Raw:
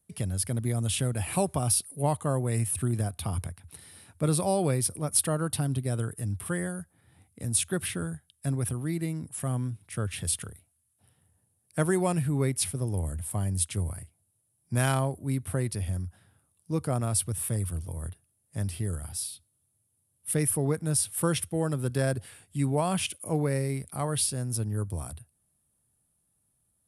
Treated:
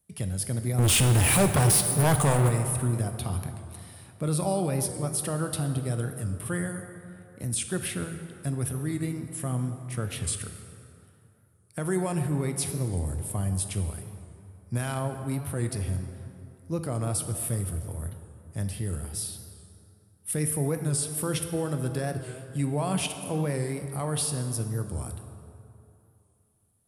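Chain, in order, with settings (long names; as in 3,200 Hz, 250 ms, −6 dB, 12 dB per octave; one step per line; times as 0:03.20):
brickwall limiter −18.5 dBFS, peak gain reduction 8 dB
0:00.79–0:02.49: leveller curve on the samples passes 5
dense smooth reverb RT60 2.7 s, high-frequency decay 0.55×, DRR 6.5 dB
wow of a warped record 45 rpm, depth 100 cents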